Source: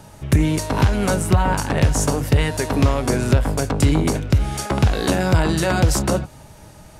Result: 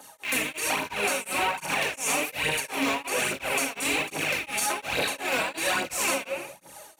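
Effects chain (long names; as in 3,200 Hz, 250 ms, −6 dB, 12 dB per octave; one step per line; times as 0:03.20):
loose part that buzzes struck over −24 dBFS, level −12 dBFS
high-pass filter 570 Hz 12 dB per octave
high-shelf EQ 7,800 Hz +10.5 dB
notch filter 5,000 Hz, Q 9
rectangular room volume 220 cubic metres, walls mixed, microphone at 2.1 metres
phase shifter 1.2 Hz, delay 4.7 ms, feedback 56%
brickwall limiter −9.5 dBFS, peak gain reduction 9.5 dB
tremolo along a rectified sine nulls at 2.8 Hz
level −6 dB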